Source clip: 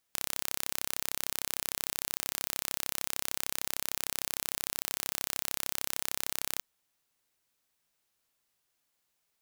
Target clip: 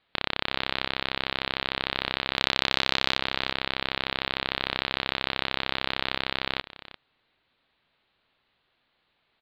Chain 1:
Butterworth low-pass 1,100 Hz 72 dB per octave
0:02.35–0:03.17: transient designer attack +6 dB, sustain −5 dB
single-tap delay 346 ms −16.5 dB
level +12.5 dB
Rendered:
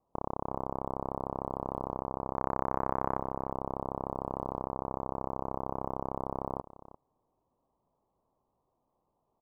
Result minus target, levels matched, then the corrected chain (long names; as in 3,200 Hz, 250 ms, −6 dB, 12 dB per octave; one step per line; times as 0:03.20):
1,000 Hz band +7.5 dB
Butterworth low-pass 4,200 Hz 72 dB per octave
0:02.35–0:03.17: transient designer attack +6 dB, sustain −5 dB
single-tap delay 346 ms −16.5 dB
level +12.5 dB